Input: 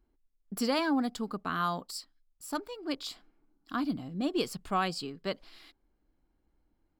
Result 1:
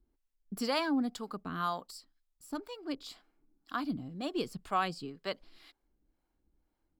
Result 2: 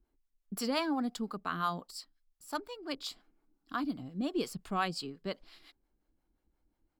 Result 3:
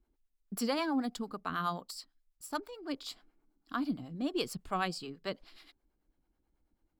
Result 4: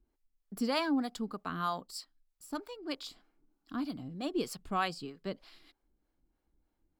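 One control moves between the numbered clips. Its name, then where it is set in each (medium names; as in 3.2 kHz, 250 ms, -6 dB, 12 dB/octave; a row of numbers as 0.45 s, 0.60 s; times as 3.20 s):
harmonic tremolo, rate: 2 Hz, 5.7 Hz, 9.2 Hz, 3.2 Hz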